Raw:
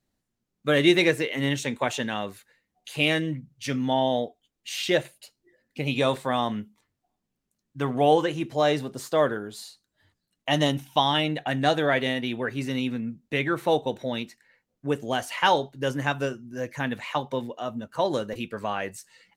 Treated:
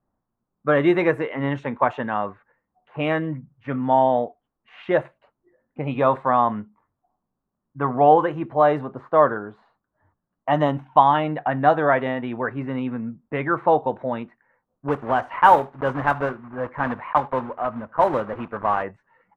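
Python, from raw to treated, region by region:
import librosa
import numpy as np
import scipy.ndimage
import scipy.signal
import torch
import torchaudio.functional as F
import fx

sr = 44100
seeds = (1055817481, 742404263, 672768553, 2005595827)

y = fx.chain(x, sr, fx.block_float(bits=3),
    fx.high_shelf(hz=8100.0, db=5.0),
    fx.echo_single(ms=78, db=-23.0), at=(14.88, 18.84))
y = fx.env_lowpass(y, sr, base_hz=1300.0, full_db=-17.5)
y = fx.curve_eq(y, sr, hz=(420.0, 1100.0, 4900.0), db=(0, 10, -24))
y = y * 10.0 ** (1.5 / 20.0)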